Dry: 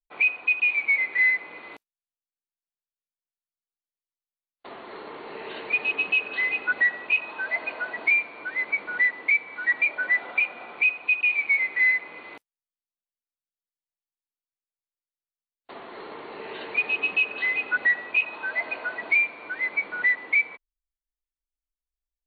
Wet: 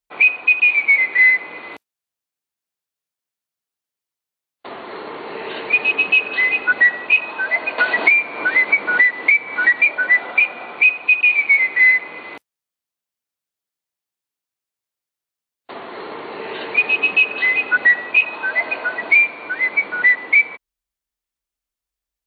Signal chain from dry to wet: HPF 56 Hz; 7.78–9.81 three-band squash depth 100%; gain +8.5 dB

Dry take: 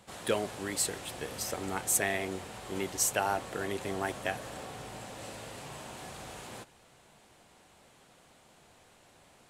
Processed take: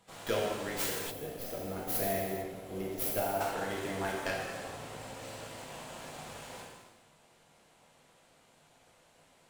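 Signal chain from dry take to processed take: tracing distortion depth 0.44 ms; notches 60/120/180/240/300 Hz; non-linear reverb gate 0.48 s falling, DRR -4 dB; spectral gain 1.11–3.41, 790–10000 Hz -9 dB; in parallel at -5.5 dB: crossover distortion -48 dBFS; on the sum: gain -8.5 dB

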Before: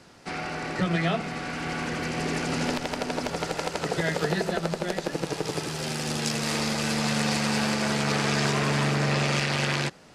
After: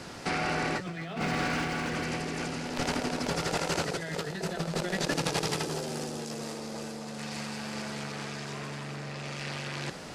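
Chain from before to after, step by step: 0.77–1.91 median filter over 3 samples; 5.63–7.18 EQ curve 140 Hz 0 dB, 230 Hz +4 dB, 460 Hz +8 dB, 2300 Hz -4 dB, 6700 Hz +1 dB; negative-ratio compressor -36 dBFS, ratio -1; thin delay 62 ms, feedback 65%, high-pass 4600 Hz, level -11 dB; gain +1.5 dB

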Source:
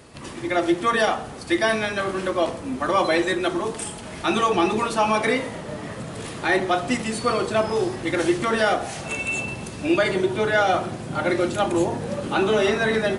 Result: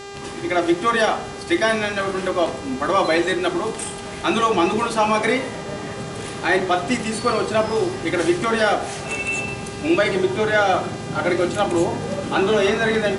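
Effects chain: buzz 400 Hz, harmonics 20, -38 dBFS -5 dB/oct; gain +2 dB

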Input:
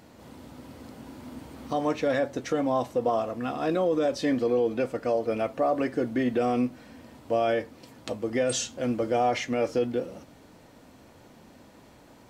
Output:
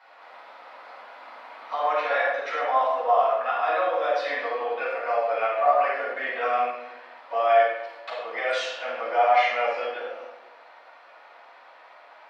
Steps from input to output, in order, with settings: HPF 790 Hz 24 dB/oct; air absorption 360 m; reverb RT60 0.95 s, pre-delay 3 ms, DRR -12.5 dB; gain -3.5 dB

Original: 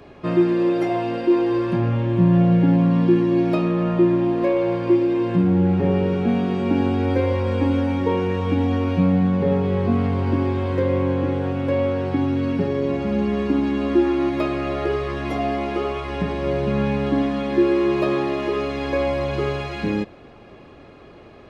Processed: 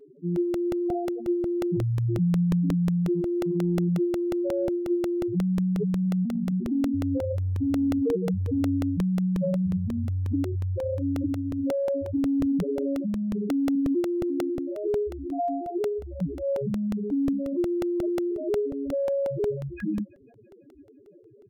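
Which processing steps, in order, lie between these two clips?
8.03–8.48 dynamic EQ 170 Hz, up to +4 dB, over -34 dBFS, Q 0.82; loudest bins only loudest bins 2; in parallel at +1 dB: negative-ratio compressor -25 dBFS, ratio -0.5; on the sum: comb 6.7 ms, depth 31%; on a send: thin delay 0.167 s, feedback 65%, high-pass 3300 Hz, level -12.5 dB; on the sum: crackling interface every 0.18 s, samples 64, repeat, from 0.36; gain -7.5 dB

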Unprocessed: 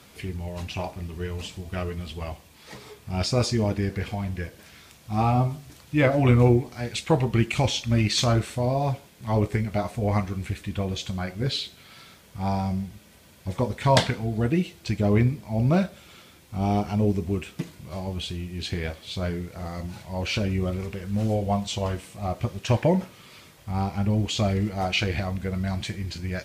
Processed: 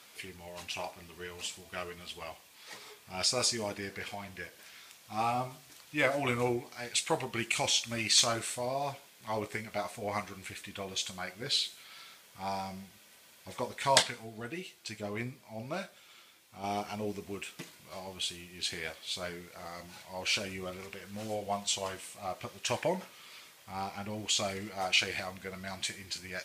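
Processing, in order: HPF 1100 Hz 6 dB/oct; dynamic EQ 8800 Hz, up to +8 dB, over -52 dBFS, Q 1.1; 14.02–16.64 flange 1.5 Hz, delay 7.6 ms, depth 2 ms, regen +68%; gain -1.5 dB

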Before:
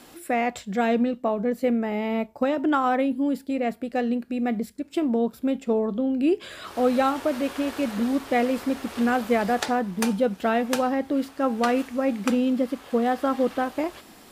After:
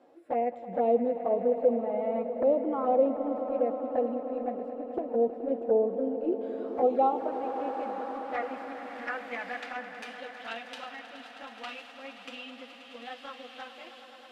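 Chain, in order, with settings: harmonic-percussive split percussive -11 dB; band-pass sweep 550 Hz -> 3100 Hz, 6.33–10.33; envelope flanger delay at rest 11.7 ms, full sweep at -24.5 dBFS; on a send: swelling echo 0.106 s, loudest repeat 5, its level -15 dB; on the sum: gain +4.5 dB

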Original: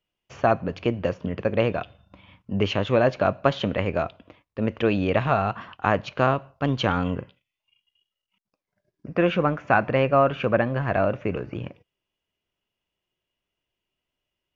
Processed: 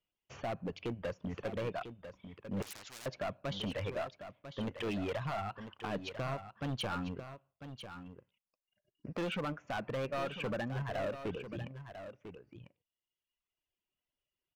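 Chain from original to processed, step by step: reverb removal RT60 1.9 s; limiter -15 dBFS, peak gain reduction 10 dB; overloaded stage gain 26 dB; echo 0.997 s -10.5 dB; 2.62–3.06 spectral compressor 10:1; gain -7 dB

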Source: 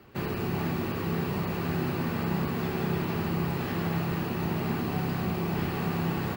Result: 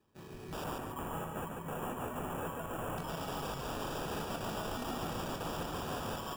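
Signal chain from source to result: notches 60/120/180/240 Hz; spectral noise reduction 29 dB; compressor 4:1, threshold -42 dBFS, peak gain reduction 12 dB; sample-rate reducer 2100 Hz, jitter 0%; wrapped overs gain 45 dB; 0.64–2.98 Butterworth band-stop 4500 Hz, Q 0.9; reverb RT60 0.35 s, pre-delay 8 ms, DRR 9 dB; lo-fi delay 0.142 s, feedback 35%, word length 13-bit, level -3.5 dB; gain +9.5 dB

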